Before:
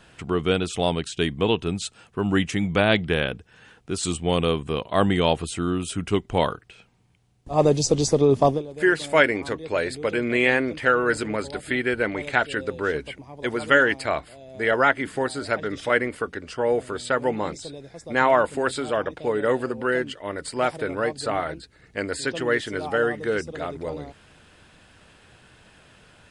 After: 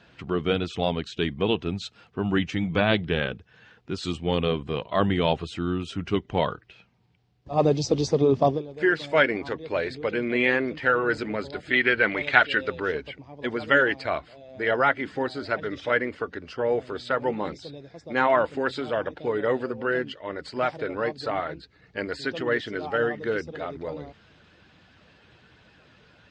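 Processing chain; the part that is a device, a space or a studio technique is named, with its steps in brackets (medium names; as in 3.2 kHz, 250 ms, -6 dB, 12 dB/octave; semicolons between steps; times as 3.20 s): clip after many re-uploads (low-pass 5.3 kHz 24 dB/octave; coarse spectral quantiser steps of 15 dB); high-pass 60 Hz; 11.73–12.80 s: peaking EQ 2.4 kHz +9 dB 2.4 oct; trim -2 dB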